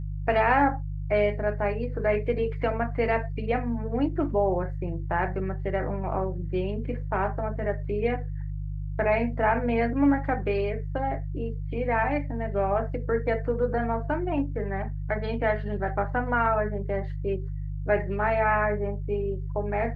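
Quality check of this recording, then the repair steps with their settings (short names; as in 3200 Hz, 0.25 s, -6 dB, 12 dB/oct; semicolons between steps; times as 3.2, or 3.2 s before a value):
hum 50 Hz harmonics 3 -32 dBFS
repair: de-hum 50 Hz, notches 3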